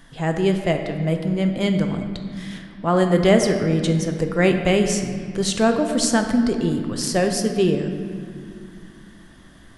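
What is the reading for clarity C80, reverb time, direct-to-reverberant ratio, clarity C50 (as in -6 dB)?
7.5 dB, 2.3 s, 4.5 dB, 6.5 dB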